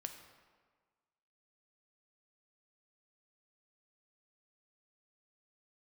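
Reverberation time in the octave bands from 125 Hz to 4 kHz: 1.4, 1.5, 1.5, 1.6, 1.3, 1.0 s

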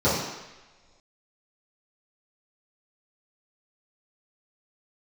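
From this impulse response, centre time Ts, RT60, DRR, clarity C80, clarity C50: 64 ms, not exponential, -13.0 dB, 4.5 dB, 1.0 dB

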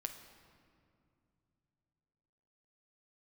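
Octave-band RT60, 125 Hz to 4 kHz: 3.8, 3.4, 2.8, 2.3, 1.9, 1.4 s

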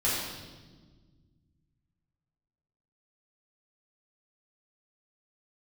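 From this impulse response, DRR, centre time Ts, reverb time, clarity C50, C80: -9.5 dB, 84 ms, 1.4 s, -0.5 dB, 1.5 dB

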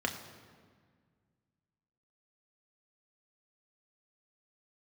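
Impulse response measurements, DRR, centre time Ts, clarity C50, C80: 2.5 dB, 25 ms, 9.0 dB, 10.0 dB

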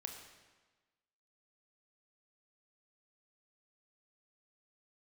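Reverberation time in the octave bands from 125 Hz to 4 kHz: 1.3, 1.3, 1.3, 1.3, 1.2, 1.1 s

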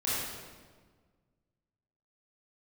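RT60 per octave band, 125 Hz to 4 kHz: 2.2, 1.9, 1.6, 1.4, 1.2, 1.1 s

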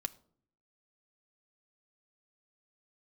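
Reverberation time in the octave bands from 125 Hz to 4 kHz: 0.90, 0.85, 0.65, 0.50, 0.35, 0.35 s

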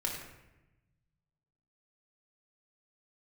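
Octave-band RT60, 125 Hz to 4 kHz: 2.0, 1.4, 1.0, 0.90, 0.95, 0.65 s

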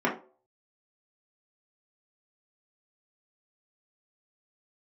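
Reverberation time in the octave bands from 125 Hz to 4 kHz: 0.35, 0.35, 0.45, 0.35, 0.25, 0.25 s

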